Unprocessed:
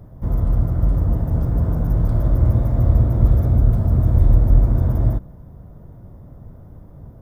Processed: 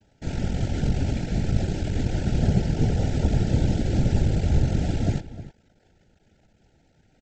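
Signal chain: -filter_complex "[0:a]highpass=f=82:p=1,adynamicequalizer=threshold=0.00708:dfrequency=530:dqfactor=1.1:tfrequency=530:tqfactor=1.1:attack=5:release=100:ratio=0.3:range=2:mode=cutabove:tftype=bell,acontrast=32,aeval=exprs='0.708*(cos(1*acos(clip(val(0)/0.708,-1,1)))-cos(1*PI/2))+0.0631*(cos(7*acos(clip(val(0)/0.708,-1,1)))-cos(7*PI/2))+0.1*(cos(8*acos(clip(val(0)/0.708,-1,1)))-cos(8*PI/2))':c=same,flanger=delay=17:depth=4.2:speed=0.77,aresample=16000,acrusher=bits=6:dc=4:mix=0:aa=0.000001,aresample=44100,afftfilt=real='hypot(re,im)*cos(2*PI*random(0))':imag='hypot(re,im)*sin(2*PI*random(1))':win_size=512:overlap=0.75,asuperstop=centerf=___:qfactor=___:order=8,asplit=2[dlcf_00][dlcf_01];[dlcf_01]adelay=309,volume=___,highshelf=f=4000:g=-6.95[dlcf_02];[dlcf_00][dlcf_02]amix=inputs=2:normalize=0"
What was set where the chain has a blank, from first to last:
1100, 2.6, 0.2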